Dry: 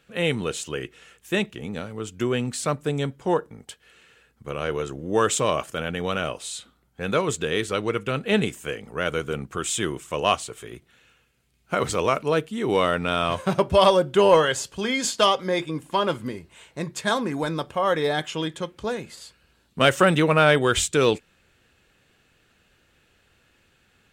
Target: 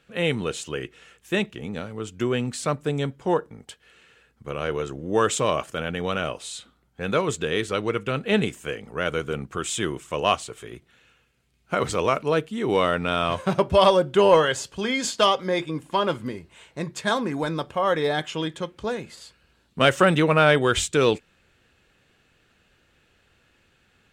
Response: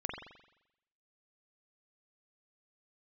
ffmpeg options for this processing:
-af "highshelf=f=9.4k:g=-7.5"

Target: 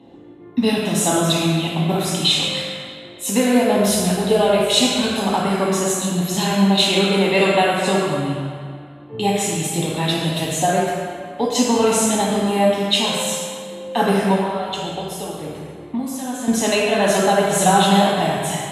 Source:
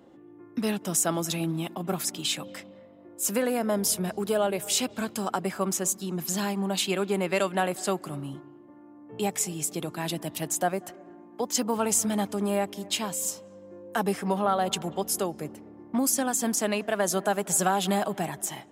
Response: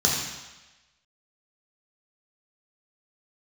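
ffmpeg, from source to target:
-filter_complex "[0:a]asettb=1/sr,asplit=3[a][b][c];[a]atrim=end=14.354[d];[b]atrim=start=14.35:end=16.48,asetpts=PTS-STARTPTS,afade=t=in:d=0.004:c=qsin,afade=t=out:st=2.126:d=0.004:c=qsin,acompressor=threshold=-34dB:ratio=6[e];[c]atrim=start=16.476[f];[d][e]acrossfade=d=0.004:c1=hsin:c2=qsin[g];[g][f]acrossfade=d=0.004:c1=qsin:c2=hsin[h];[1:a]atrim=start_sample=2205,asetrate=25578,aresample=44100[i];[h][i]afir=irnorm=-1:irlink=0,volume=-8.5dB"

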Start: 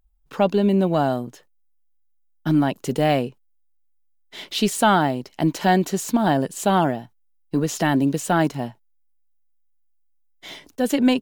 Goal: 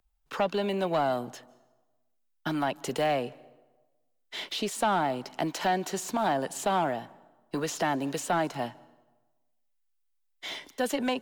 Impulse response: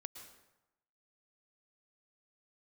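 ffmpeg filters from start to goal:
-filter_complex "[0:a]acrossover=split=200|520|1100[a][b][c][d];[a]acompressor=threshold=-33dB:ratio=4[e];[b]acompressor=threshold=-32dB:ratio=4[f];[c]acompressor=threshold=-25dB:ratio=4[g];[d]acompressor=threshold=-36dB:ratio=4[h];[e][f][g][h]amix=inputs=4:normalize=0,asplit=2[i][j];[j]highpass=f=720:p=1,volume=12dB,asoftclip=type=tanh:threshold=-12dB[k];[i][k]amix=inputs=2:normalize=0,lowpass=f=6.7k:p=1,volume=-6dB,asplit=2[l][m];[1:a]atrim=start_sample=2205,asetrate=34398,aresample=44100[n];[m][n]afir=irnorm=-1:irlink=0,volume=-12.5dB[o];[l][o]amix=inputs=2:normalize=0,volume=-5.5dB"

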